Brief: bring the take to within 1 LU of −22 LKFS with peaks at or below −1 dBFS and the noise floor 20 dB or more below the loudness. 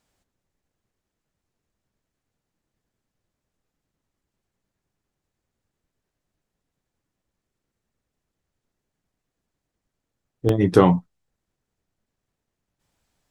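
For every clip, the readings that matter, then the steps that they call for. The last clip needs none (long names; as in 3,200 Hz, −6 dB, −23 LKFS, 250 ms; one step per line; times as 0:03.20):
number of dropouts 1; longest dropout 1.8 ms; integrated loudness −19.5 LKFS; sample peak −1.0 dBFS; target loudness −22.0 LKFS
→ repair the gap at 0:10.49, 1.8 ms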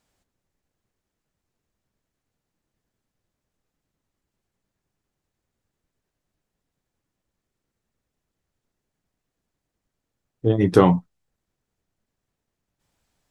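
number of dropouts 0; integrated loudness −19.5 LKFS; sample peak −1.0 dBFS; target loudness −22.0 LKFS
→ level −2.5 dB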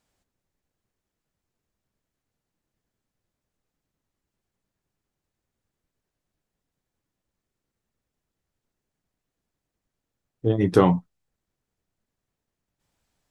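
integrated loudness −22.0 LKFS; sample peak −3.5 dBFS; background noise floor −86 dBFS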